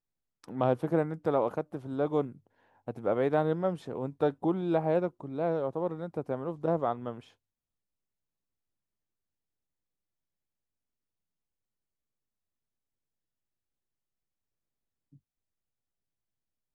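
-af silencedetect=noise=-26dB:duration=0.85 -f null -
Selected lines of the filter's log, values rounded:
silence_start: 7.10
silence_end: 16.75 | silence_duration: 9.65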